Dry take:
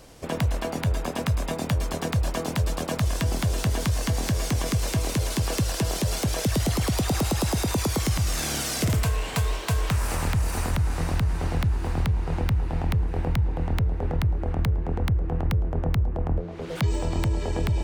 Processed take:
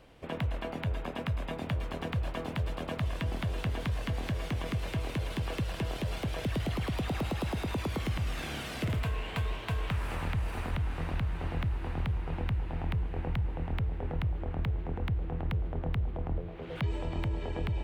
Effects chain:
high shelf with overshoot 4,200 Hz −11 dB, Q 1.5
feedback delay with all-pass diffusion 1,389 ms, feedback 44%, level −16 dB
convolution reverb RT60 0.70 s, pre-delay 110 ms, DRR 19.5 dB
level −8 dB

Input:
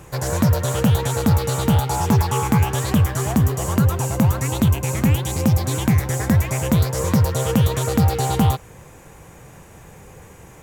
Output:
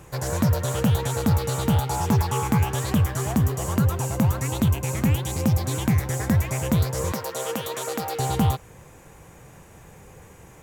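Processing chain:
0:07.12–0:08.19: high-pass filter 390 Hz 12 dB per octave
level −4 dB

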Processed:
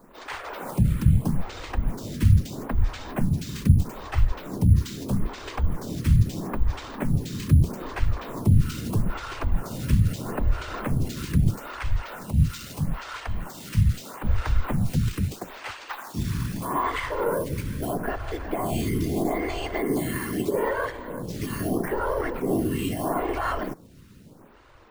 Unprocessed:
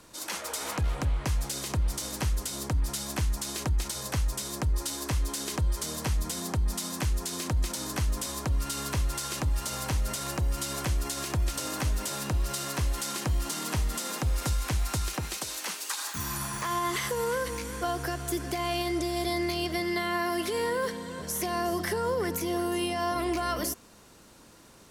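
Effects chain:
0:11.56–0:14.24: parametric band 240 Hz −12.5 dB 2.4 octaves
random phases in short frames
bass and treble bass +8 dB, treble −12 dB
bad sample-rate conversion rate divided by 4×, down none, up hold
phaser with staggered stages 0.78 Hz
level +4.5 dB

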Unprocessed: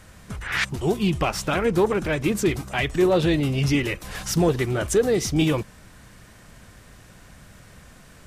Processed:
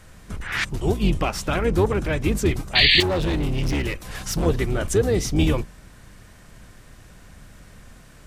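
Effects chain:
sub-octave generator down 2 octaves, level +2 dB
0:02.75–0:03.03: sound drawn into the spectrogram noise 1,700–4,700 Hz −15 dBFS
0:03.00–0:04.46: gain into a clipping stage and back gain 18.5 dB
level −1 dB

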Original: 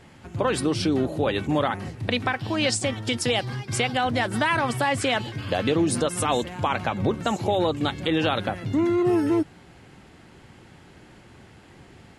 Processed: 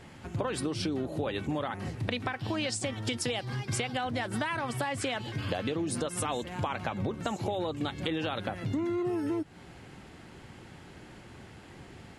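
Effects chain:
downward compressor 6 to 1, threshold −29 dBFS, peak gain reduction 11 dB

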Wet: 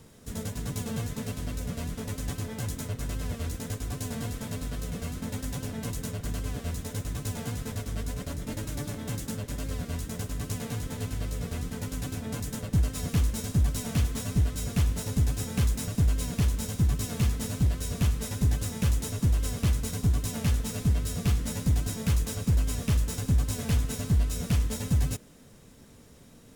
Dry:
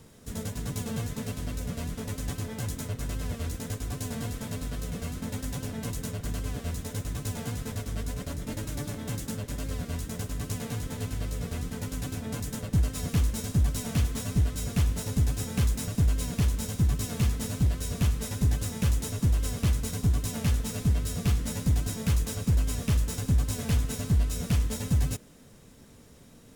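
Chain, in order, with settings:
floating-point word with a short mantissa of 6 bits

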